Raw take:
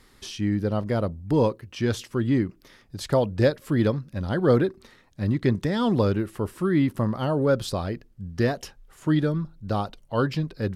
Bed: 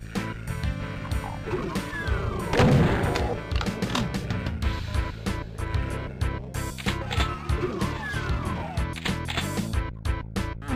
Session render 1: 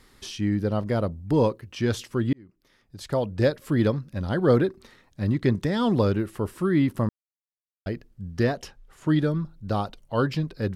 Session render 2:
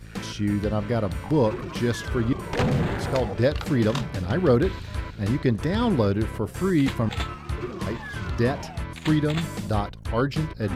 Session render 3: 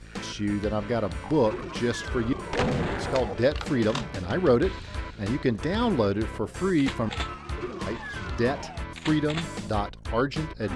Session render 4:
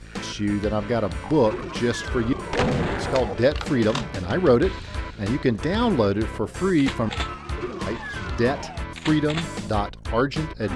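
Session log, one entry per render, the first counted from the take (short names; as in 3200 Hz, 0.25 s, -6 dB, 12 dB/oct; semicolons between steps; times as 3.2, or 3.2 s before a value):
2.33–3.64 fade in linear; 7.09–7.86 mute; 8.43–9.09 high shelf 8800 Hz -8 dB
add bed -4 dB
LPF 9300 Hz 24 dB/oct; bell 120 Hz -7 dB 1.5 oct
gain +3.5 dB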